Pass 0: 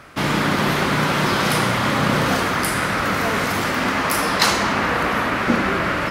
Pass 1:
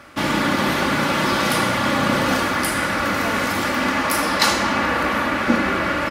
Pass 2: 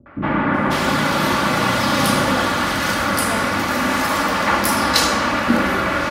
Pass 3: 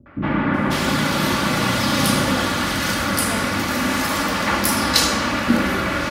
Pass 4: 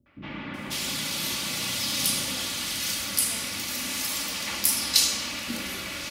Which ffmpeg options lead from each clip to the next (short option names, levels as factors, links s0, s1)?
-af "highpass=48,aecho=1:1:3.5:0.45,volume=0.891"
-filter_complex "[0:a]acrossover=split=380|2200[s0][s1][s2];[s1]adelay=60[s3];[s2]adelay=540[s4];[s0][s3][s4]amix=inputs=3:normalize=0,volume=1.41"
-af "equalizer=f=900:t=o:w=2.5:g=-6,volume=1.19"
-af "aexciter=amount=6.6:drive=1.1:freq=2200,volume=0.133"